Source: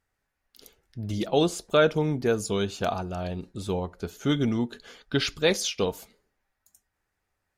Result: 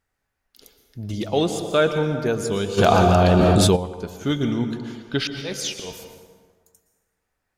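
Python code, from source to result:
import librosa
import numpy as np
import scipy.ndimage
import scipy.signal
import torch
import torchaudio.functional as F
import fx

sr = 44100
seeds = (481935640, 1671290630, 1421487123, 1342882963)

y = fx.auto_swell(x, sr, attack_ms=210.0, at=(5.27, 5.91))
y = fx.rev_plate(y, sr, seeds[0], rt60_s=1.6, hf_ratio=0.6, predelay_ms=105, drr_db=7.0)
y = fx.env_flatten(y, sr, amount_pct=100, at=(2.77, 3.75), fade=0.02)
y = y * librosa.db_to_amplitude(1.5)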